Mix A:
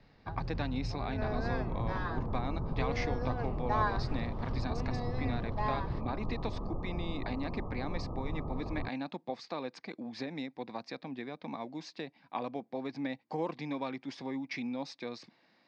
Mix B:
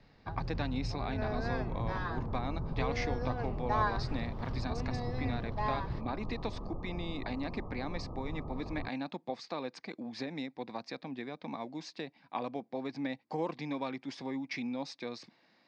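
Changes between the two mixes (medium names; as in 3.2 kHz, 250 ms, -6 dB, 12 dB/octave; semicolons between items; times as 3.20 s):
second sound -3.5 dB; master: add treble shelf 11 kHz +11 dB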